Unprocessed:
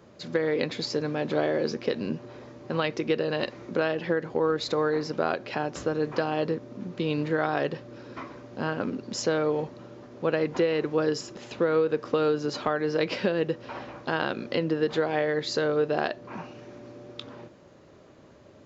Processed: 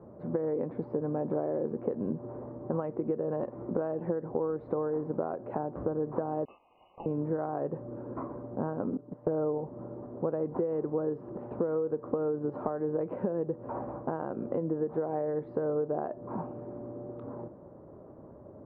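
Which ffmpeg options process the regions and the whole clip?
-filter_complex "[0:a]asettb=1/sr,asplit=3[s0][s1][s2];[s0]atrim=end=6.454[s3];[s1]atrim=start=6.45:end=7.06,asetpts=PTS-STARTPTS,afade=t=in:d=0.004:c=qsin,afade=t=out:st=0.606:d=0.004:c=qsin,asuperstop=centerf=1400:order=20:qfactor=1.6,tiltshelf=f=940:g=-6,lowpass=f=2600:t=q:w=0.5098,lowpass=f=2600:t=q:w=0.6013,lowpass=f=2600:t=q:w=0.9,lowpass=f=2600:t=q:w=2.563,afreqshift=-3100[s4];[s2]atrim=start=7.056[s5];[s3][s4]acrossfade=d=0.004:c1=hsin:c2=qsin[s6];[s6][s5]acrossfade=d=0.004:c1=qsin:c2=hsin,asettb=1/sr,asplit=3[s7][s8][s9];[s7]atrim=end=8.974[s10];[s8]atrim=start=8.97:end=9.58,asetpts=PTS-STARTPTS,afade=t=in:d=0.004:c=qsin,afade=t=out:st=0.606:d=0.004:c=qsin,lowpass=3000,agate=range=0.2:threshold=0.0224:ratio=16:release=100:detection=peak,aecho=1:1:6.7:0.62,atrim=end_sample=26901[s11];[s9]atrim=start=9.576[s12];[s10][s11]acrossfade=d=0.004:c1=hsin:c2=qsin[s13];[s13][s12]acrossfade=d=0.004:c1=qsin:c2=hsin,acompressor=threshold=0.0282:ratio=6,lowpass=f=1000:w=0.5412,lowpass=f=1000:w=1.3066,volume=1.5"

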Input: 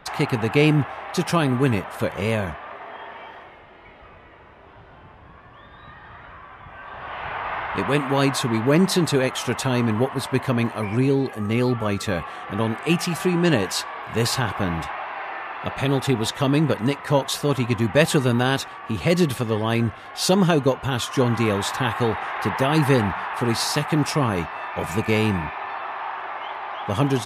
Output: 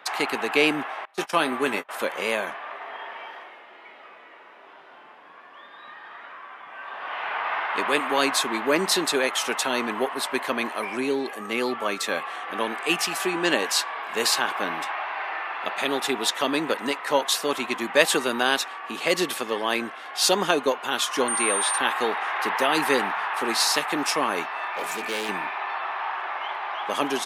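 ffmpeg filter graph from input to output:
-filter_complex "[0:a]asettb=1/sr,asplit=3[s0][s1][s2];[s0]atrim=end=1.054[s3];[s1]atrim=start=1.05:end=1.89,asetpts=PTS-STARTPTS,afade=t=in:d=0.004:c=qsin,afade=t=out:st=0.836:d=0.004:c=qsin,agate=range=0.0447:threshold=0.0501:ratio=16:release=100:detection=peak,asplit=2[s4][s5];[s5]adelay=19,volume=0.282[s6];[s4][s6]amix=inputs=2:normalize=0,atrim=end_sample=37044[s7];[s2]atrim=start=1.886[s8];[s3][s7]acrossfade=d=0.004:c1=hsin:c2=qsin[s9];[s9][s8]acrossfade=d=0.004:c1=qsin:c2=hsin,asettb=1/sr,asplit=3[s10][s11][s12];[s10]atrim=end=21.284[s13];[s11]atrim=start=21.28:end=21.78,asetpts=PTS-STARTPTS,afade=t=in:d=0.004:c=qsin,afade=t=out:st=0.496:d=0.004:c=qsin,highpass=f=190:p=1,acrossover=split=4400[s14][s15];[s15]acompressor=threshold=0.00631:ratio=4:attack=1:release=60[s16];[s14][s16]amix=inputs=2:normalize=0,aeval=exprs='val(0)+0.0447*sin(2*PI*8800*n/s)':c=same[s17];[s12]atrim=start=21.776[s18];[s13][s17]acrossfade=d=0.004:c1=hsin:c2=qsin[s19];[s19][s18]acrossfade=d=0.004:c1=qsin:c2=hsin,asettb=1/sr,asplit=3[s20][s21][s22];[s20]atrim=end=24.724[s23];[s21]atrim=start=24.72:end=25.29,asetpts=PTS-STARTPTS,afade=t=in:d=0.004:c=qsin,afade=t=out:st=0.566:d=0.004:c=qsin,bandreject=f=60:t=h:w=6,bandreject=f=120:t=h:w=6,bandreject=f=180:t=h:w=6,bandreject=f=240:t=h:w=6,bandreject=f=300:t=h:w=6,bandreject=f=360:t=h:w=6,bandreject=f=420:t=h:w=6,volume=15,asoftclip=hard,volume=0.0668[s24];[s22]atrim=start=25.286[s25];[s23][s24]acrossfade=d=0.004:c1=hsin:c2=qsin[s26];[s26][s25]acrossfade=d=0.004:c1=qsin:c2=hsin,highpass=f=240:w=0.5412,highpass=f=240:w=1.3066,lowshelf=f=490:g=-11.5,volume=1.41"

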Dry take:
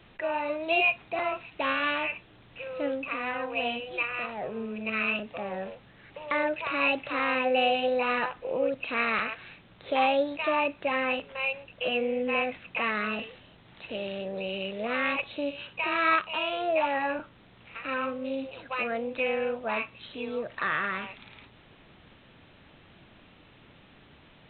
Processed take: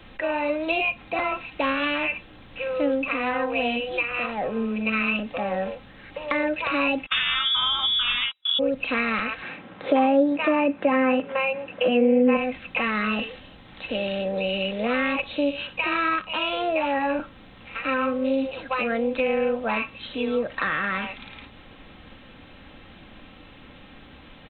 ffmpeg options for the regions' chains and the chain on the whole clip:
-filter_complex "[0:a]asettb=1/sr,asplit=3[s0][s1][s2];[s0]atrim=end=7.064[s3];[s1]atrim=start=7.06:end=8.59,asetpts=PTS-STARTPTS,afade=t=in:d=0.004:c=qsin,afade=t=out:st=1.526:d=0.004:c=qsin,agate=range=0.0178:threshold=0.02:ratio=16:release=100:detection=peak,acontrast=71,lowpass=f=3300:t=q:w=0.5098,lowpass=f=3300:t=q:w=0.6013,lowpass=f=3300:t=q:w=0.9,lowpass=f=3300:t=q:w=2.563,afreqshift=-3900[s4];[s2]atrim=start=8.586[s5];[s3][s4]acrossfade=d=0.004:c1=hsin:c2=qsin[s6];[s6][s5]acrossfade=d=0.004:c1=qsin:c2=hsin,asettb=1/sr,asplit=3[s7][s8][s9];[s7]atrim=end=9.424[s10];[s8]atrim=start=9.42:end=12.37,asetpts=PTS-STARTPTS,afade=t=in:d=0.004:c=qsin,afade=t=out:st=2.946:d=0.004:c=qsin,acontrast=84,highpass=180,lowpass=2100[s11];[s9]atrim=start=12.366[s12];[s10][s11]acrossfade=d=0.004:c1=hsin:c2=qsin[s13];[s13][s12]acrossfade=d=0.004:c1=qsin:c2=hsin,lowshelf=f=67:g=6,aecho=1:1:3.8:0.42,acrossover=split=310[s14][s15];[s15]acompressor=threshold=0.0355:ratio=6[s16];[s14][s16]amix=inputs=2:normalize=0,volume=2.24"

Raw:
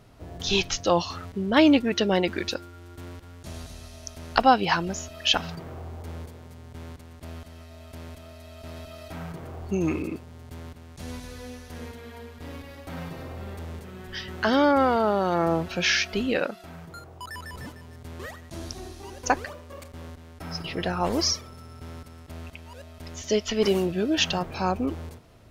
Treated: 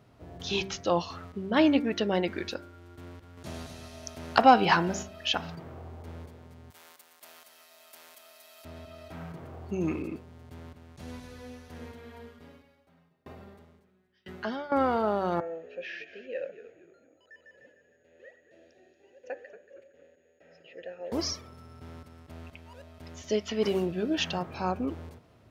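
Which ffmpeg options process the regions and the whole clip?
-filter_complex "[0:a]asettb=1/sr,asplit=3[s0][s1][s2];[s0]atrim=end=3.374[s3];[s1]atrim=start=3.37:end=5.03,asetpts=PTS-STARTPTS,afade=t=in:d=0.004:c=qsin,afade=t=out:st=1.656:d=0.004:c=qsin,acontrast=65,highpass=f=110:p=1[s4];[s2]atrim=start=5.026[s5];[s3][s4]acrossfade=d=0.004:c1=hsin:c2=qsin[s6];[s6][s5]acrossfade=d=0.004:c1=qsin:c2=hsin,asettb=1/sr,asplit=3[s7][s8][s9];[s7]atrim=end=6.704[s10];[s8]atrim=start=6.7:end=8.65,asetpts=PTS-STARTPTS,afade=t=in:d=0.004:c=qsin,afade=t=out:st=1.946:d=0.004:c=qsin,highpass=760,aemphasis=mode=production:type=75fm[s11];[s9]atrim=start=8.646[s12];[s10][s11]acrossfade=d=0.004:c1=hsin:c2=qsin[s13];[s13][s12]acrossfade=d=0.004:c1=qsin:c2=hsin,asettb=1/sr,asplit=3[s14][s15][s16];[s14]atrim=end=12.264[s17];[s15]atrim=start=12.26:end=14.72,asetpts=PTS-STARTPTS,afade=t=in:d=0.004:c=qsin,afade=t=out:st=2.456:d=0.004:c=qsin,aecho=1:1:4.9:0.52,atrim=end_sample=108486,aeval=exprs='val(0)*pow(10,-34*if(lt(mod(1*n/s,1),2*abs(1)/1000),1-mod(1*n/s,1)/(2*abs(1)/1000),(mod(1*n/s,1)-2*abs(1)/1000)/(1-2*abs(1)/1000))/20)':c=same[s18];[s16]atrim=start=14.716[s19];[s17][s18]acrossfade=d=0.004:c1=hsin:c2=qsin[s20];[s20][s19]acrossfade=d=0.004:c1=qsin:c2=hsin,asettb=1/sr,asplit=3[s21][s22][s23];[s21]atrim=end=15.404[s24];[s22]atrim=start=15.4:end=21.12,asetpts=PTS-STARTPTS,afade=t=in:d=0.004:c=qsin,afade=t=out:st=5.716:d=0.004:c=qsin,aeval=exprs='val(0)+0.00562*sin(2*PI*6700*n/s)':c=same,asplit=3[s25][s26][s27];[s25]bandpass=f=530:t=q:w=8,volume=1[s28];[s26]bandpass=f=1840:t=q:w=8,volume=0.501[s29];[s27]bandpass=f=2480:t=q:w=8,volume=0.355[s30];[s28][s29][s30]amix=inputs=3:normalize=0,asplit=4[s31][s32][s33][s34];[s32]adelay=231,afreqshift=-80,volume=0.2[s35];[s33]adelay=462,afreqshift=-160,volume=0.0716[s36];[s34]adelay=693,afreqshift=-240,volume=0.026[s37];[s31][s35][s36][s37]amix=inputs=4:normalize=0,atrim=end_sample=252252[s38];[s23]atrim=start=21.116[s39];[s24][s38]acrossfade=d=0.004:c1=hsin:c2=qsin[s40];[s40][s39]acrossfade=d=0.004:c1=qsin:c2=hsin,highpass=74,equalizer=f=11000:w=0.3:g=-7,bandreject=f=96.91:t=h:w=4,bandreject=f=193.82:t=h:w=4,bandreject=f=290.73:t=h:w=4,bandreject=f=387.64:t=h:w=4,bandreject=f=484.55:t=h:w=4,bandreject=f=581.46:t=h:w=4,bandreject=f=678.37:t=h:w=4,bandreject=f=775.28:t=h:w=4,bandreject=f=872.19:t=h:w=4,bandreject=f=969.1:t=h:w=4,bandreject=f=1066.01:t=h:w=4,bandreject=f=1162.92:t=h:w=4,bandreject=f=1259.83:t=h:w=4,bandreject=f=1356.74:t=h:w=4,bandreject=f=1453.65:t=h:w=4,bandreject=f=1550.56:t=h:w=4,bandreject=f=1647.47:t=h:w=4,bandreject=f=1744.38:t=h:w=4,bandreject=f=1841.29:t=h:w=4,bandreject=f=1938.2:t=h:w=4,bandreject=f=2035.11:t=h:w=4,bandreject=f=2132.02:t=h:w=4,bandreject=f=2228.93:t=h:w=4,bandreject=f=2325.84:t=h:w=4,volume=0.631"

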